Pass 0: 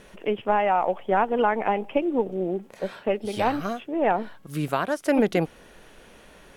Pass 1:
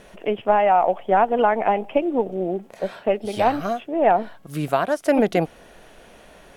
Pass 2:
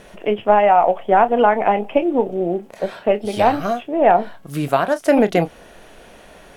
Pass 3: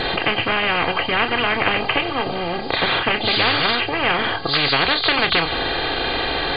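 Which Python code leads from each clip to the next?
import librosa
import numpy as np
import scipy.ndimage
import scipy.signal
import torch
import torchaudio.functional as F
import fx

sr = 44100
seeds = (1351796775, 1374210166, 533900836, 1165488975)

y1 = fx.peak_eq(x, sr, hz=680.0, db=7.0, octaves=0.4)
y1 = y1 * 10.0 ** (1.5 / 20.0)
y2 = fx.doubler(y1, sr, ms=29.0, db=-12.0)
y2 = fx.end_taper(y2, sr, db_per_s=400.0)
y2 = y2 * 10.0 ** (3.5 / 20.0)
y3 = fx.freq_compress(y2, sr, knee_hz=3100.0, ratio=4.0)
y3 = y3 + 0.83 * np.pad(y3, (int(2.5 * sr / 1000.0), 0))[:len(y3)]
y3 = fx.spectral_comp(y3, sr, ratio=10.0)
y3 = y3 * 10.0 ** (-1.0 / 20.0)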